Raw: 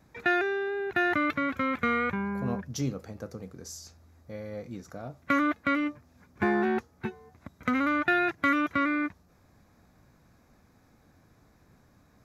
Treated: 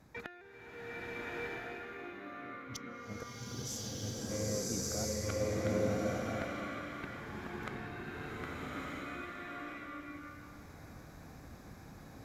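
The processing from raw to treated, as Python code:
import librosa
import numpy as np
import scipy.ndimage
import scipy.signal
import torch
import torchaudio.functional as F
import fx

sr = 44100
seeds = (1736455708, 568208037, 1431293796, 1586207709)

y = fx.gate_flip(x, sr, shuts_db=-28.0, range_db=-28)
y = fx.tube_stage(y, sr, drive_db=29.0, bias=0.3)
y = fx.rev_bloom(y, sr, seeds[0], attack_ms=1280, drr_db=-9.5)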